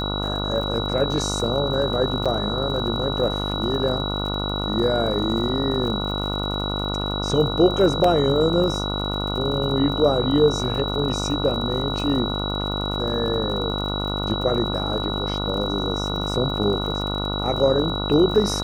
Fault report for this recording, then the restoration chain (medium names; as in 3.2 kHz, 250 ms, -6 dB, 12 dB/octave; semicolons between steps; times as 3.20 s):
buzz 50 Hz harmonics 29 -27 dBFS
crackle 59 per s -31 dBFS
whine 3.9 kHz -28 dBFS
2.25–2.26 s: dropout 6 ms
8.04 s: dropout 3.5 ms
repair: de-click; band-stop 3.9 kHz, Q 30; de-hum 50 Hz, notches 29; interpolate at 2.25 s, 6 ms; interpolate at 8.04 s, 3.5 ms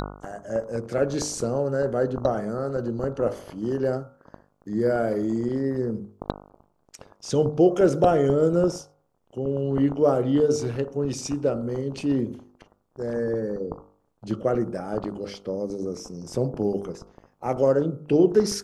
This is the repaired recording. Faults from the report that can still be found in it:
nothing left